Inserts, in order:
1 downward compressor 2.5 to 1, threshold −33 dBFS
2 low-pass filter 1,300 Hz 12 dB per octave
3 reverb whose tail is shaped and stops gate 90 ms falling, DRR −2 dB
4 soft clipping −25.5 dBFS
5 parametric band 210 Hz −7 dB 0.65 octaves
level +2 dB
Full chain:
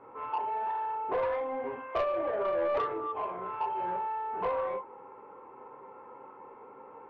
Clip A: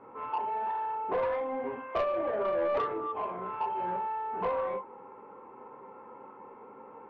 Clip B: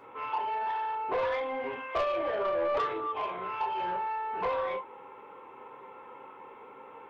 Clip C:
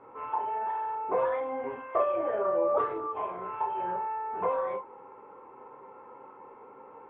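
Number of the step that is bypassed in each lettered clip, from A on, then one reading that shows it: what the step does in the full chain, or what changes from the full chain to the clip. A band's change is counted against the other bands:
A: 5, 125 Hz band +2.5 dB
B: 2, 4 kHz band +7.5 dB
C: 4, distortion level −15 dB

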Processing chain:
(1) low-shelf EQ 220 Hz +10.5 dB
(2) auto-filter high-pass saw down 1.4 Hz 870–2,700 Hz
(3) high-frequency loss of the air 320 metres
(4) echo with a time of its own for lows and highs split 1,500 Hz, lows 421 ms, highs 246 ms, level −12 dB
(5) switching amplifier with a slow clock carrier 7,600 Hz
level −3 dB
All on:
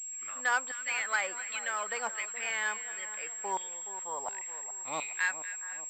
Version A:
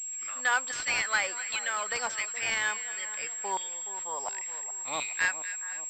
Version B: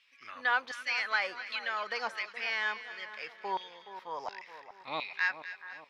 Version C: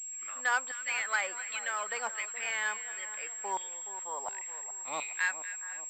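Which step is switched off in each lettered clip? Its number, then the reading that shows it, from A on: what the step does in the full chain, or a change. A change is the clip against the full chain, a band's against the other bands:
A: 3, 4 kHz band +5.0 dB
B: 5, 8 kHz band −25.5 dB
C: 1, 250 Hz band −3.0 dB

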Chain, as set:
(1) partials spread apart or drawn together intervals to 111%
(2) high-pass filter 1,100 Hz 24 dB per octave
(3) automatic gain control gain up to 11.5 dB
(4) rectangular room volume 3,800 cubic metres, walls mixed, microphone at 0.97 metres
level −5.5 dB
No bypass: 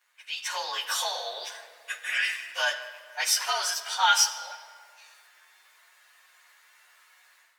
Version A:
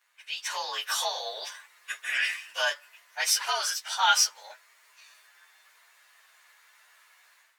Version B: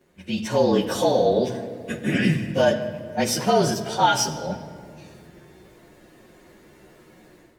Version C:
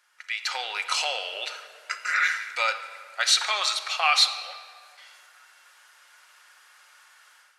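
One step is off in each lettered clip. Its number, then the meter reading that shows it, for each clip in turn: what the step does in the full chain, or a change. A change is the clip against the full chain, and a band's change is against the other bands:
4, echo-to-direct ratio −7.0 dB to none audible
2, 500 Hz band +22.0 dB
1, 8 kHz band −4.5 dB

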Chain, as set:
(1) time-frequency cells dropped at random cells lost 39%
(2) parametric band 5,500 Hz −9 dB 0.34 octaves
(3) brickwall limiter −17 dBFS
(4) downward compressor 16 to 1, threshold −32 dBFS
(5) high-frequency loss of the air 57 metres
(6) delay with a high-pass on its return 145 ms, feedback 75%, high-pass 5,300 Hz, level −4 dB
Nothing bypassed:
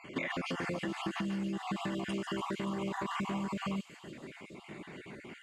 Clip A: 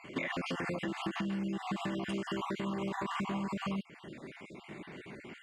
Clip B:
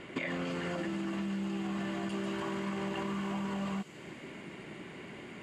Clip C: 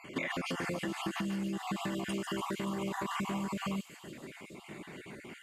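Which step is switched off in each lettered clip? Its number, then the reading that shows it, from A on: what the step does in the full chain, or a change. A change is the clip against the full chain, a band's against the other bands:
6, echo-to-direct ratio −18.5 dB to none audible
1, 1 kHz band −2.5 dB
5, 8 kHz band +5.0 dB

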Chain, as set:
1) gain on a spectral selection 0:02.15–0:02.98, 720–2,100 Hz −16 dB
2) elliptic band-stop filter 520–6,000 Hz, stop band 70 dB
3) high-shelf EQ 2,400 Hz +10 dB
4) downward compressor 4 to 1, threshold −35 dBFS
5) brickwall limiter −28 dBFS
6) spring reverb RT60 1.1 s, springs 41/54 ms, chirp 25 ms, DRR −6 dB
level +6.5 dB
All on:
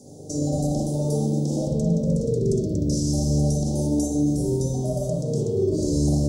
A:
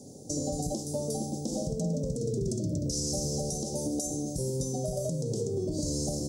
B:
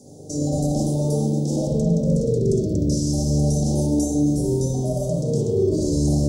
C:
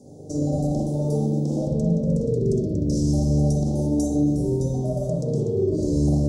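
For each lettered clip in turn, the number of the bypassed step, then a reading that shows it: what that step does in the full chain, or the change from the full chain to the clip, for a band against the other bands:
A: 6, 8 kHz band +7.5 dB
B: 4, average gain reduction 7.5 dB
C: 3, 8 kHz band −7.0 dB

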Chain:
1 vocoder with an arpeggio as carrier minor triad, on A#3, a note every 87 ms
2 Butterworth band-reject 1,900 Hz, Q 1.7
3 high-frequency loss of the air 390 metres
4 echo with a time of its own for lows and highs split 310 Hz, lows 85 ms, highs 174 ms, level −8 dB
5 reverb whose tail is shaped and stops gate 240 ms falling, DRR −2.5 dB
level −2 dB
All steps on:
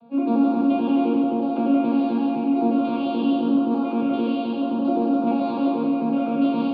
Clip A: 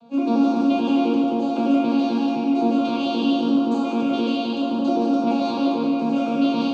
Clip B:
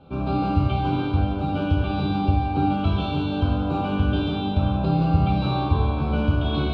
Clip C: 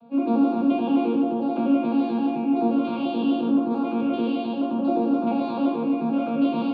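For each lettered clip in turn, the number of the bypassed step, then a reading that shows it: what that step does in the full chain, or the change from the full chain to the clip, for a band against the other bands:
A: 3, 4 kHz band +7.5 dB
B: 1, 125 Hz band +19.0 dB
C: 4, change in integrated loudness −1.5 LU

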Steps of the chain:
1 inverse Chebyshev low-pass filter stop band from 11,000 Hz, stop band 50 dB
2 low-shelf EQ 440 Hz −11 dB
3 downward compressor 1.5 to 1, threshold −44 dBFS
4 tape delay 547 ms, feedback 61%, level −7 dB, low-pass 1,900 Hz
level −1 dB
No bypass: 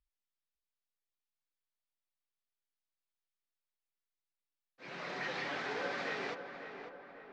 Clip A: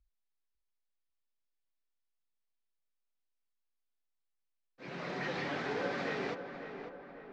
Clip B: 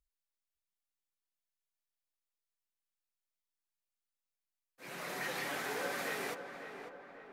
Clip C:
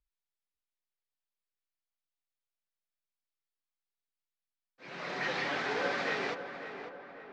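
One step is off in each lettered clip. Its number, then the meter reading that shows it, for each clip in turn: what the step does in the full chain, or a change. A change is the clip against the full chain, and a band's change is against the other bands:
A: 2, 125 Hz band +8.5 dB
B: 1, 8 kHz band +12.0 dB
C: 3, average gain reduction 4.5 dB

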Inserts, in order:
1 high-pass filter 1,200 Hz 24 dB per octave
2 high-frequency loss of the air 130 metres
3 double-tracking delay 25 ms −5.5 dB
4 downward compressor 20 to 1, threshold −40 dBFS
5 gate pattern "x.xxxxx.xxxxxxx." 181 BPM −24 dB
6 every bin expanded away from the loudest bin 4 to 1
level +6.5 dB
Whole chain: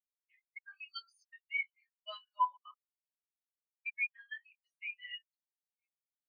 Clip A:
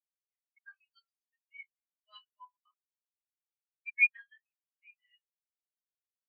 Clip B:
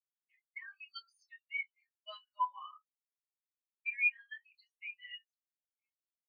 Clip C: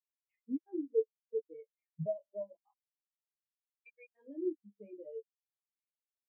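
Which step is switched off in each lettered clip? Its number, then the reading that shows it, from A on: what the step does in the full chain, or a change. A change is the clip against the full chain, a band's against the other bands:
4, average gain reduction 3.0 dB
5, change in momentary loudness spread +2 LU
1, change in momentary loudness spread +3 LU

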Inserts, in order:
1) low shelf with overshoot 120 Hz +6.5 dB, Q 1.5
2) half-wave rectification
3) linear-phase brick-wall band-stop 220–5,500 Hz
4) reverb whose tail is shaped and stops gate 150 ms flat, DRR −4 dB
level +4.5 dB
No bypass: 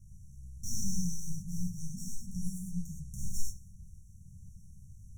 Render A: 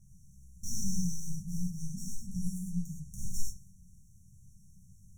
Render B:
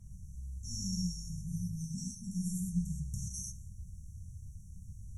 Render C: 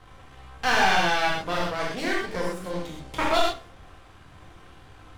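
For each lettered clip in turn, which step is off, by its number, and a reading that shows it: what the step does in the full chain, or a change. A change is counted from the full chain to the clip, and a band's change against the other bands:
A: 1, change in momentary loudness spread −9 LU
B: 2, distortion level −2 dB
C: 3, 4 kHz band +20.5 dB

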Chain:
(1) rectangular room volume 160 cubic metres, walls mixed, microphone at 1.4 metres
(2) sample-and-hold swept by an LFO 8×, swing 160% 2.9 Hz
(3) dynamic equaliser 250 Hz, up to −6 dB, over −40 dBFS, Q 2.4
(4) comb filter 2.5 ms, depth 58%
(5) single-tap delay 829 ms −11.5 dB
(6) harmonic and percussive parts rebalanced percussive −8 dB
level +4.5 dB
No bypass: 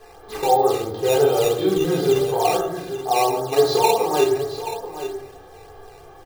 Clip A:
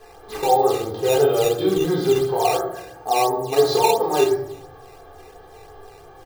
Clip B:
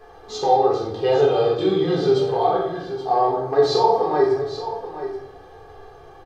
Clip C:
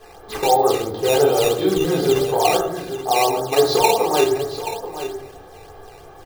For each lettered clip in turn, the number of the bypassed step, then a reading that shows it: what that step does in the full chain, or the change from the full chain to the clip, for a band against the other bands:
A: 5, change in momentary loudness spread −2 LU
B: 2, distortion level −6 dB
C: 6, 2 kHz band +2.5 dB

